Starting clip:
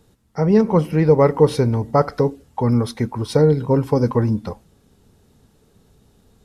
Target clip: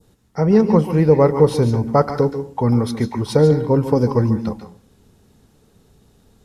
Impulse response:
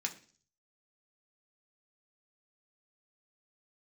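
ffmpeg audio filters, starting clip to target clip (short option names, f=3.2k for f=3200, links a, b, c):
-filter_complex "[0:a]adynamicequalizer=threshold=0.0178:dfrequency=2100:dqfactor=0.74:tfrequency=2100:tqfactor=0.74:attack=5:release=100:ratio=0.375:range=2.5:mode=cutabove:tftype=bell,asplit=2[a][b];[1:a]atrim=start_sample=2205,adelay=141[c];[b][c]afir=irnorm=-1:irlink=0,volume=-9.5dB[d];[a][d]amix=inputs=2:normalize=0,volume=1dB"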